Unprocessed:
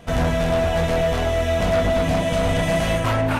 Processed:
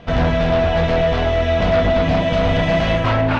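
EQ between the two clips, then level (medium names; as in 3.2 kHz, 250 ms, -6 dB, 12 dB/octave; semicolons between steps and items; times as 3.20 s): low-pass 4.7 kHz 24 dB/octave; +3.5 dB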